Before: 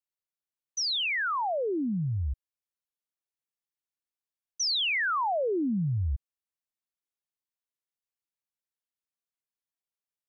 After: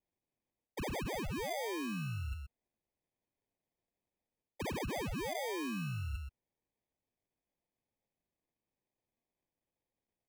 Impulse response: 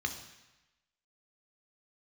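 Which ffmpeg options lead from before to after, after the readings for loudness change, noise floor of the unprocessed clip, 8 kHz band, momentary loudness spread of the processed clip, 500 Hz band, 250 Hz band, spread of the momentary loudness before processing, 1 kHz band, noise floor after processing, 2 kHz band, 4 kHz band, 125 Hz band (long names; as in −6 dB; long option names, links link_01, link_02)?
−11.0 dB, below −85 dBFS, can't be measured, 8 LU, −8.0 dB, −8.0 dB, 9 LU, −11.5 dB, below −85 dBFS, −13.0 dB, −17.5 dB, −8.5 dB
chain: -filter_complex "[0:a]highpass=frequency=90:poles=1,acrusher=samples=32:mix=1:aa=0.000001,equalizer=frequency=2600:width=7.5:gain=12,asplit=2[link_01][link_02];[link_02]aecho=0:1:125:0.282[link_03];[link_01][link_03]amix=inputs=2:normalize=0,areverse,acompressor=threshold=-37dB:ratio=6,areverse"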